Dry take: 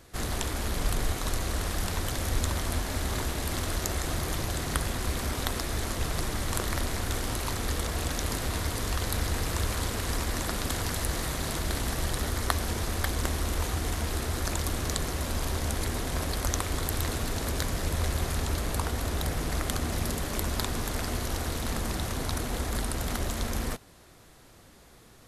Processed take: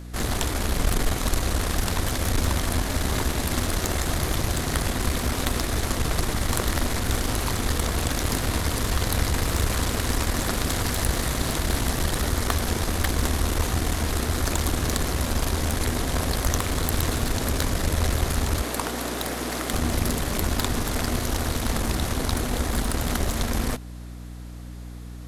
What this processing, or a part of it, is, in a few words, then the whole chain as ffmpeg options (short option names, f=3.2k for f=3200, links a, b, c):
valve amplifier with mains hum: -filter_complex "[0:a]asettb=1/sr,asplit=3[a][b][c];[a]atrim=end=18.624[d];[b]atrim=start=18.62:end=19.73,asetpts=PTS-STARTPTS,afade=t=in:d=0.004:c=qsin,afade=t=out:st=1.106:d=0.004:c=qsin,highpass=f=230:w=0.5412,highpass=f=230:w=1.3066[e];[c]atrim=start=19.726[f];[d][e]acrossfade=d=0.004:c1=hsin:c2=qsin[g];[g][f]acrossfade=d=0.004:c1=qsin:c2=hsin,equalizer=f=250:t=o:w=0.22:g=3.5,aeval=exprs='(tanh(10*val(0)+0.65)-tanh(0.65))/10':c=same,aeval=exprs='val(0)+0.00562*(sin(2*PI*60*n/s)+sin(2*PI*2*60*n/s)/2+sin(2*PI*3*60*n/s)/3+sin(2*PI*4*60*n/s)/4+sin(2*PI*5*60*n/s)/5)':c=same,volume=8.5dB"